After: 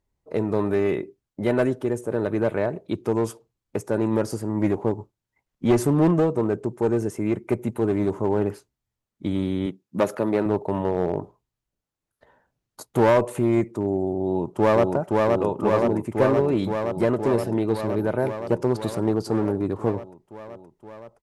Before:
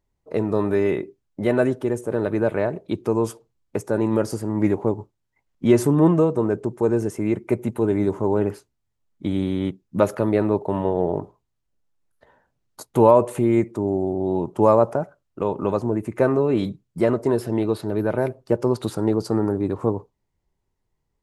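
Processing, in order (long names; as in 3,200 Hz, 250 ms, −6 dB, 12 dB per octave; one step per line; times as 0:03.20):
asymmetric clip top −16 dBFS, bottom −6.5 dBFS
0:09.66–0:10.46: high-pass filter 160 Hz 12 dB per octave
0:14.23–0:14.94: delay throw 520 ms, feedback 80%, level −2 dB
level −1.5 dB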